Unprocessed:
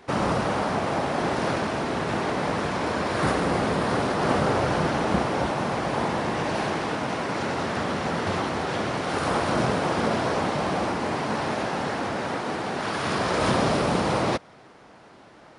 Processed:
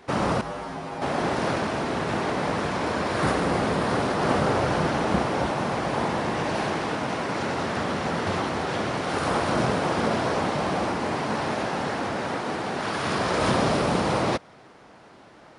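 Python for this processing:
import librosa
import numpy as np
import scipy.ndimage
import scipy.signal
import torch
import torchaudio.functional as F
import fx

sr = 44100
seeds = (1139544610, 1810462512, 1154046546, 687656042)

y = fx.comb_fb(x, sr, f0_hz=54.0, decay_s=0.27, harmonics='odd', damping=0.0, mix_pct=90, at=(0.41, 1.02))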